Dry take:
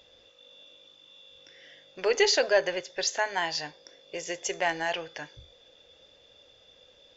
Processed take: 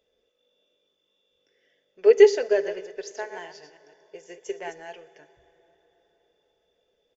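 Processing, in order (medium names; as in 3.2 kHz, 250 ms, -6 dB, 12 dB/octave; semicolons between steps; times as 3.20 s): 2.46–4.80 s: chunks repeated in reverse 164 ms, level -7 dB; fifteen-band graphic EQ 400 Hz +10 dB, 1 kHz -3 dB, 4 kHz -8 dB; plate-style reverb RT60 4.7 s, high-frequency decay 0.55×, DRR 13 dB; dynamic bell 450 Hz, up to +4 dB, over -36 dBFS, Q 5.3; comb 4.6 ms, depth 37%; upward expansion 1.5:1, over -34 dBFS; trim -1.5 dB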